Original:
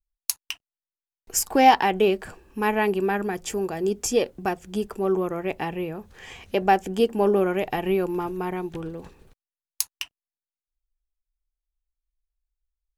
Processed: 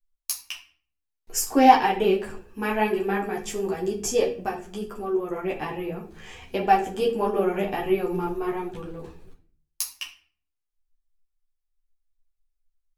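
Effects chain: 4.47–5.3 compressor 2:1, threshold -29 dBFS, peak gain reduction 6 dB; shoebox room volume 50 m³, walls mixed, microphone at 0.47 m; ensemble effect

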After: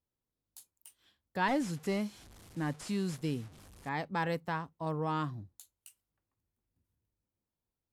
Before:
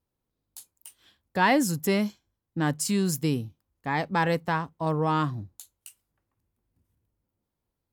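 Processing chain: 1.48–3.89 delta modulation 64 kbps, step -40.5 dBFS; gain -8.5 dB

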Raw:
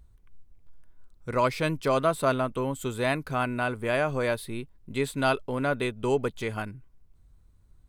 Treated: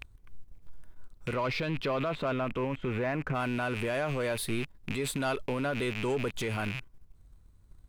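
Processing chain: rattling part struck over -48 dBFS, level -30 dBFS; 1.33–3.34 LPF 5300 Hz -> 2000 Hz 24 dB/oct; sample leveller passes 1; limiter -26 dBFS, peak gain reduction 14 dB; gain +2.5 dB

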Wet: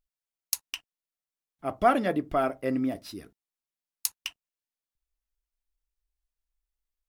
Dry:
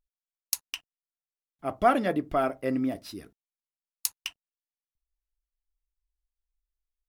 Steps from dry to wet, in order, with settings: AAC 192 kbps 44100 Hz

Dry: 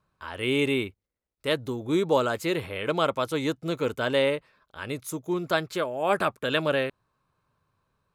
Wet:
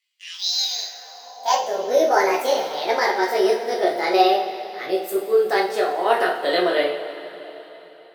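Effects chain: gliding pitch shift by +11 st ending unshifted; two-slope reverb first 0.4 s, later 3.9 s, from -17 dB, DRR -2.5 dB; high-pass sweep 3500 Hz -> 400 Hz, 0.51–1.87

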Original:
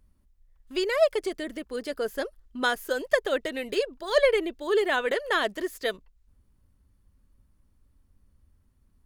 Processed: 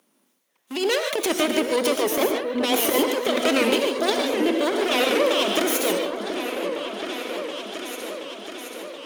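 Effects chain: minimum comb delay 0.31 ms; Bessel high-pass 370 Hz, order 8; transient shaper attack +3 dB, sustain +8 dB; negative-ratio compressor -32 dBFS, ratio -1; on a send: repeats that get brighter 0.727 s, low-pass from 750 Hz, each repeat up 2 oct, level -6 dB; on the sum: non-linear reverb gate 0.17 s rising, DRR 4 dB; record warp 78 rpm, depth 100 cents; gain +8.5 dB

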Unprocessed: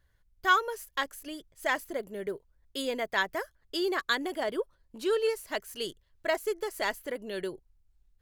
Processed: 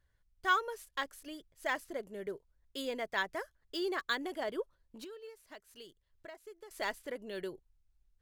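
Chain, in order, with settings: 5.04–6.71 compressor 3:1, threshold -47 dBFS, peak gain reduction 17 dB; decimation joined by straight lines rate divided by 2×; gain -5.5 dB

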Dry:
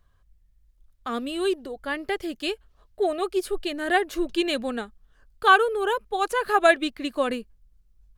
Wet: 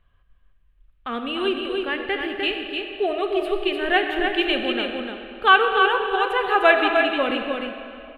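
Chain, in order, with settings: resonant high shelf 4100 Hz -13 dB, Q 3; echo 0.301 s -5 dB; on a send at -5 dB: reverb RT60 2.6 s, pre-delay 5 ms

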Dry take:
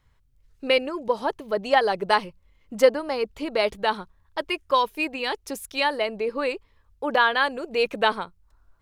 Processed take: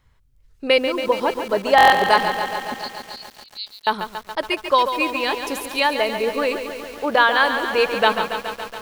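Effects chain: 2.74–3.87 Butterworth band-pass 4200 Hz, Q 4; stuck buffer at 1.76, samples 1024, times 6; lo-fi delay 0.14 s, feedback 80%, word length 7-bit, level -8.5 dB; gain +4 dB

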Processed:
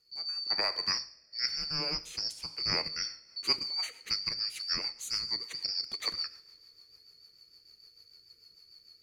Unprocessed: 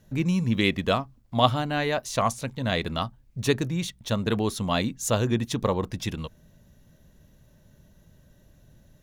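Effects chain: four-band scrambler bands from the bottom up 2341; vocal rider 0.5 s; two-slope reverb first 0.61 s, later 3.3 s, from -21 dB, DRR 9.5 dB; rotary speaker horn 1 Hz, later 6.7 Hz, at 2.64; 0.5–0.98 three-band squash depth 100%; gain -7 dB

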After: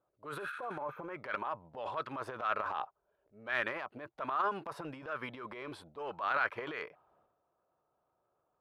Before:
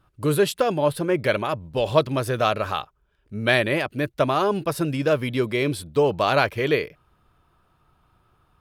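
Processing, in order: auto-wah 580–1400 Hz, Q 3, up, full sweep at -16 dBFS; spectral repair 0.42–1, 1200–12000 Hz both; transient shaper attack -7 dB, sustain +10 dB; gain -5 dB

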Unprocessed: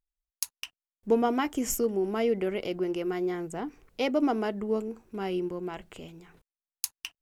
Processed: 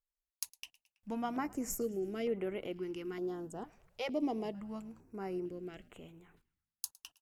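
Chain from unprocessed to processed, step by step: frequency-shifting echo 0.109 s, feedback 52%, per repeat -59 Hz, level -22.5 dB; stepped notch 2.2 Hz 270–5000 Hz; gain -8 dB

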